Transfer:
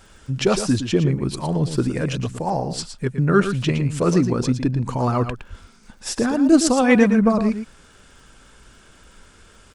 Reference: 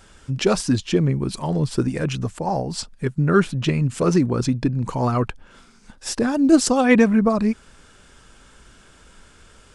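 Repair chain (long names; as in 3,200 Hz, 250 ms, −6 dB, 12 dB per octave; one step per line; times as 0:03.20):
click removal
0:05.49–0:05.61: high-pass filter 140 Hz 24 dB per octave
echo removal 114 ms −9.5 dB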